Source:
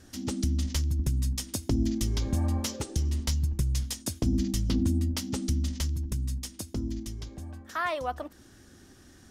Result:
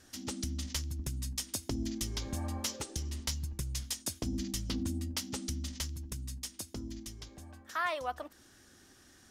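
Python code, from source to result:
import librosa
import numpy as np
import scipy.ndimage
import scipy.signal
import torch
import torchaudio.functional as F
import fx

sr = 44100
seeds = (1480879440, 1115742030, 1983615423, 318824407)

y = fx.low_shelf(x, sr, hz=470.0, db=-9.5)
y = y * librosa.db_to_amplitude(-1.5)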